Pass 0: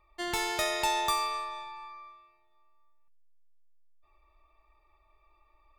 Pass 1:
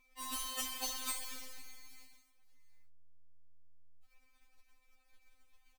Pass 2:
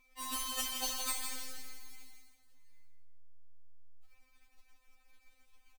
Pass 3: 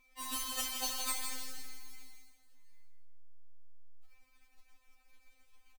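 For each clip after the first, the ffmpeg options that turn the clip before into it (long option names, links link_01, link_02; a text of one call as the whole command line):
ffmpeg -i in.wav -filter_complex "[0:a]asplit=2[link_01][link_02];[link_02]adelay=495.6,volume=-27dB,highshelf=frequency=4000:gain=-11.2[link_03];[link_01][link_03]amix=inputs=2:normalize=0,acrusher=bits=2:mode=log:mix=0:aa=0.000001,afftfilt=real='re*3.46*eq(mod(b,12),0)':imag='im*3.46*eq(mod(b,12),0)':win_size=2048:overlap=0.75" out.wav
ffmpeg -i in.wav -af "aecho=1:1:165|330|495|660:0.447|0.147|0.0486|0.0161,volume=2dB" out.wav
ffmpeg -i in.wav -filter_complex "[0:a]asplit=2[link_01][link_02];[link_02]adelay=30,volume=-11.5dB[link_03];[link_01][link_03]amix=inputs=2:normalize=0" out.wav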